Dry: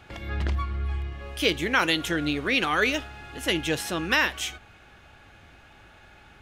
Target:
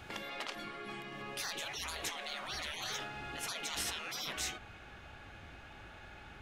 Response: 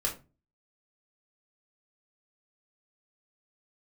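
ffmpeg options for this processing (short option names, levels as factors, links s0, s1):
-af "asetnsamples=n=441:p=0,asendcmd='1.22 highshelf g -6',highshelf=f=7300:g=5.5,afftfilt=real='re*lt(hypot(re,im),0.0447)':imag='im*lt(hypot(re,im),0.0447)':win_size=1024:overlap=0.75,asoftclip=type=tanh:threshold=0.0841"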